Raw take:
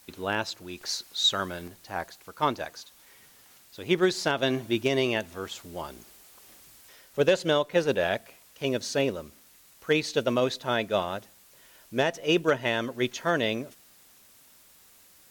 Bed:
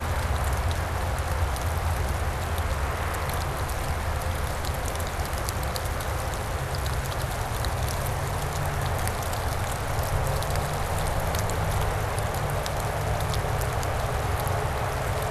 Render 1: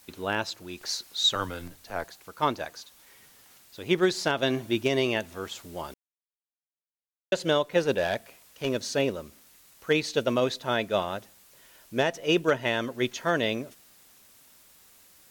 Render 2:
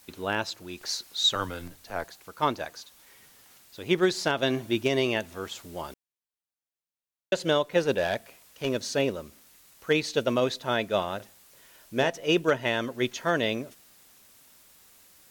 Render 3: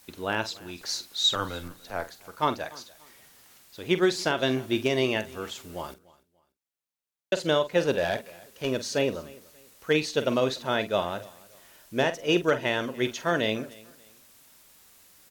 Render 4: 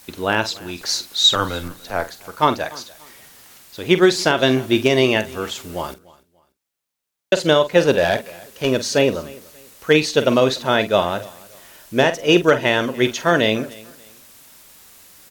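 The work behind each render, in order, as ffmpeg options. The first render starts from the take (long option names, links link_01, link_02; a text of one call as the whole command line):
ffmpeg -i in.wav -filter_complex "[0:a]asettb=1/sr,asplit=3[link_01][link_02][link_03];[link_01]atrim=end=1.354[link_04];[link_02]atrim=start=1.35:end=2.04,asetpts=PTS-STARTPTS,afade=type=in:duration=0.004:curve=qsin,afade=type=out:start_time=0.686:duration=0.004:curve=qsin,afreqshift=-89[link_05];[link_03]atrim=start=2.036[link_06];[link_04][link_05]acrossfade=duration=0.004:curve1=hsin:curve2=qsin[link_07];[link_07][link_06]acrossfade=duration=0.004:curve1=qsin:curve2=hsin,asettb=1/sr,asplit=3[link_08][link_09][link_10];[link_08]atrim=end=7.934[link_11];[link_09]atrim=start=7.93:end=8.8,asetpts=PTS-STARTPTS,afade=type=in:duration=0.004:curve=qsin,afade=type=out:start_time=0.866:duration=0.004:curve=qsin,volume=19.5dB,asoftclip=hard,volume=-19.5dB[link_12];[link_10]atrim=start=8.796[link_13];[link_11][link_12]acrossfade=duration=0.004:curve1=hsin:curve2=qsin[link_14];[link_14][link_13]acrossfade=duration=0.004:curve1=qsin:curve2=hsin,asplit=3[link_15][link_16][link_17];[link_15]atrim=end=5.94,asetpts=PTS-STARTPTS,afade=type=out:start_time=5.936:duration=0.004:curve=hsin[link_18];[link_16]atrim=start=5.94:end=7.32,asetpts=PTS-STARTPTS,volume=0[link_19];[link_17]atrim=start=7.32,asetpts=PTS-STARTPTS,afade=type=in:duration=0.004:curve=hsin[link_20];[link_18][link_19][link_20]concat=n=3:v=0:a=1" out.wav
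ffmpeg -i in.wav -filter_complex "[0:a]asettb=1/sr,asplit=3[link_01][link_02][link_03];[link_01]atrim=end=11.164[link_04];[link_02]atrim=start=11.16:end=12.1,asetpts=PTS-STARTPTS,afade=type=in:duration=0.004:curve=qsin,afade=type=out:start_time=0.936:duration=0.004:curve=qsin,asplit=2[link_05][link_06];[link_06]adelay=38,volume=-11dB[link_07];[link_05][link_07]amix=inputs=2:normalize=0,atrim=end_sample=41454[link_08];[link_03]atrim=start=12.096[link_09];[link_04][link_08]acrossfade=duration=0.004:curve1=hsin:curve2=qsin[link_10];[link_10][link_09]acrossfade=duration=0.004:curve1=qsin:curve2=hsin" out.wav
ffmpeg -i in.wav -filter_complex "[0:a]asplit=2[link_01][link_02];[link_02]adelay=46,volume=-12dB[link_03];[link_01][link_03]amix=inputs=2:normalize=0,aecho=1:1:292|584:0.075|0.0225" out.wav
ffmpeg -i in.wav -af "volume=9.5dB,alimiter=limit=-3dB:level=0:latency=1" out.wav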